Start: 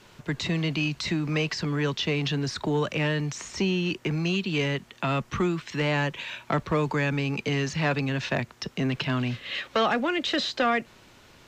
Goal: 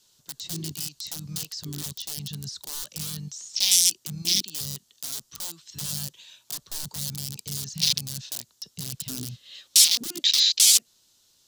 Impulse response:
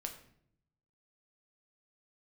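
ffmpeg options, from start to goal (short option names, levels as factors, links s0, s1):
-af "aeval=exprs='(mod(10*val(0)+1,2)-1)/10':c=same,aexciter=amount=9:drive=6.5:freq=3400,afwtdn=0.2,volume=0.531"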